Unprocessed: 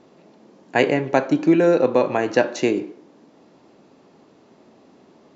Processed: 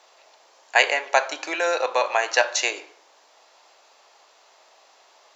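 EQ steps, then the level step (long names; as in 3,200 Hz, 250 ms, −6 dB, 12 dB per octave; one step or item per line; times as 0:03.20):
high-pass filter 670 Hz 24 dB per octave
high-shelf EQ 3,000 Hz +10.5 dB
+2.0 dB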